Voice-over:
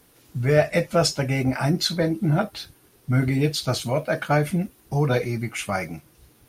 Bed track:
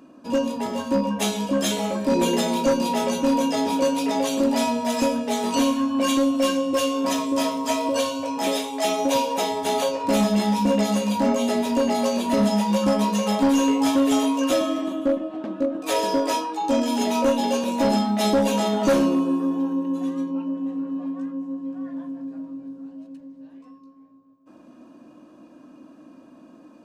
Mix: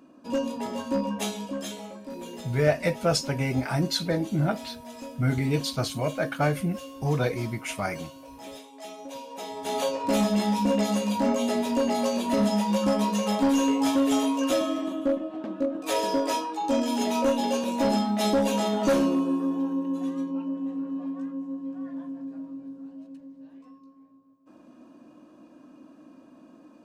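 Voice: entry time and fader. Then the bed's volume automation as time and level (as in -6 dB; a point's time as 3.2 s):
2.10 s, -4.0 dB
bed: 1.14 s -5 dB
2.13 s -18.5 dB
9.2 s -18.5 dB
9.85 s -3.5 dB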